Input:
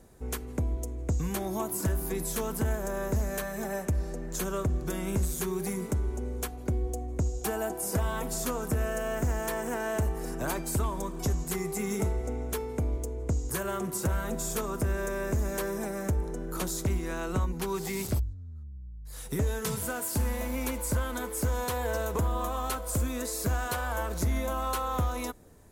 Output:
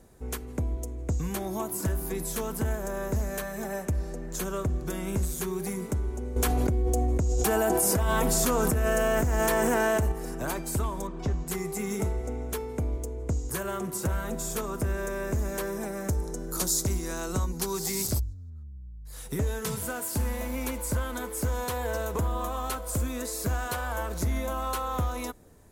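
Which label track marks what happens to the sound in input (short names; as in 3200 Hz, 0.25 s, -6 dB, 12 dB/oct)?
6.360000	10.120000	fast leveller amount 100%
11.070000	11.480000	LPF 3600 Hz
16.090000	18.500000	resonant high shelf 3800 Hz +8 dB, Q 1.5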